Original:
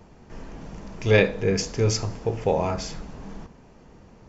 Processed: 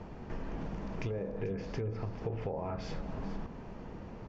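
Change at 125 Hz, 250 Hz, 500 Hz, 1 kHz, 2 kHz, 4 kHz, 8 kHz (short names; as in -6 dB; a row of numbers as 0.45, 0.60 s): -11.0 dB, -9.5 dB, -14.5 dB, -11.5 dB, -20.0 dB, -21.0 dB, n/a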